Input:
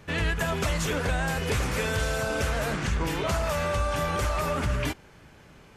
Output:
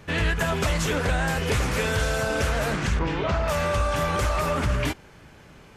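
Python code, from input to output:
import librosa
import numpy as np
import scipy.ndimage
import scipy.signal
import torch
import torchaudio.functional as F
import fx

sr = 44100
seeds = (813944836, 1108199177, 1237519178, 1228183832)

y = fx.air_absorb(x, sr, metres=170.0, at=(2.99, 3.48))
y = fx.doppler_dist(y, sr, depth_ms=0.16)
y = y * librosa.db_to_amplitude(3.0)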